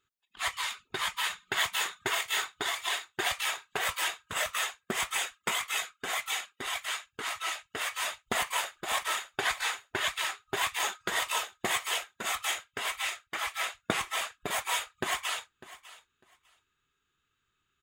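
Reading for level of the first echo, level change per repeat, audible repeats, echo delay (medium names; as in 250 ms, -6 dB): -18.0 dB, -15.0 dB, 2, 600 ms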